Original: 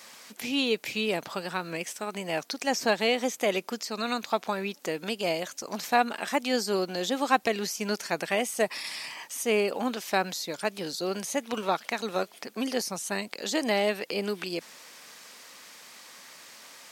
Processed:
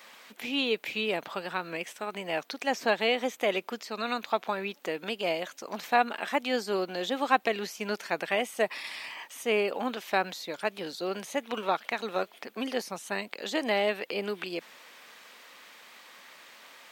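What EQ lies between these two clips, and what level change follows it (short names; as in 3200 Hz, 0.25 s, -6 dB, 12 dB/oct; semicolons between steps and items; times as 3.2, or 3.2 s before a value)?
HPF 290 Hz 6 dB/oct; band shelf 7600 Hz -9.5 dB; 0.0 dB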